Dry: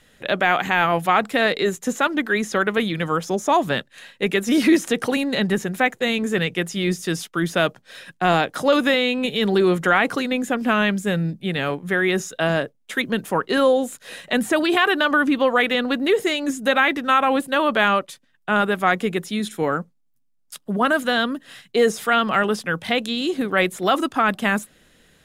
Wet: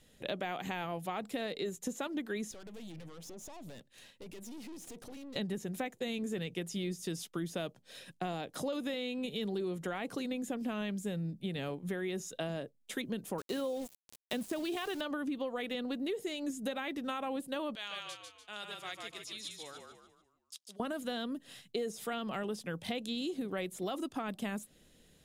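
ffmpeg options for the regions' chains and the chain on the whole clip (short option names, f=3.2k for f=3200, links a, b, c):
-filter_complex "[0:a]asettb=1/sr,asplit=3[a][b][c];[a]atrim=end=2.514[d];[b]atrim=start=2.51:end=5.36,asetpts=PTS-STARTPTS,afade=t=in:d=0.004:c=qsin,afade=t=out:st=2.846:d=0.004:c=qsin,acompressor=threshold=-31dB:ratio=4:attack=3.2:release=140:knee=1:detection=peak,aeval=exprs='(tanh(79.4*val(0)+0.5)-tanh(0.5))/79.4':c=same[e];[c]atrim=start=5.356[f];[d][e]acrossfade=d=0.004:c1=hsin:c2=qsin[g];[g][f]acrossfade=d=0.004:c1=qsin:c2=hsin,asettb=1/sr,asplit=3[h][i][j];[h]atrim=end=13.384[k];[i]atrim=start=13.38:end=15.01,asetpts=PTS-STARTPTS,afade=t=in:d=0.004:c=qsin,afade=t=out:st=1.626:d=0.004:c=qsin,highpass=63,aeval=exprs='val(0)*gte(abs(val(0)),0.0422)':c=same[l];[j]atrim=start=15.006[m];[k][l]acrossfade=d=0.004:c1=hsin:c2=qsin[n];[n][m]acrossfade=d=0.004:c1=qsin:c2=hsin,asettb=1/sr,asplit=3[o][p][q];[o]atrim=end=17.754[r];[p]atrim=start=17.75:end=20.8,asetpts=PTS-STARTPTS,afade=t=in:d=0.004:c=qsin,afade=t=out:st=3.046:d=0.004:c=qsin,bandpass=f=4.8k:t=q:w=1.1,asplit=6[s][t][u][v][w][x];[t]adelay=147,afreqshift=-39,volume=-4dB[y];[u]adelay=294,afreqshift=-78,volume=-11.5dB[z];[v]adelay=441,afreqshift=-117,volume=-19.1dB[aa];[w]adelay=588,afreqshift=-156,volume=-26.6dB[ab];[x]adelay=735,afreqshift=-195,volume=-34.1dB[ac];[s][y][z][aa][ab][ac]amix=inputs=6:normalize=0,atrim=end_sample=134505[ad];[q]atrim=start=20.796[ae];[r][ad]acrossfade=d=0.004:c1=hsin:c2=qsin[af];[af][ae]acrossfade=d=0.004:c1=qsin:c2=hsin,equalizer=f=1.5k:w=0.88:g=-10.5,acompressor=threshold=-28dB:ratio=6,volume=-6dB"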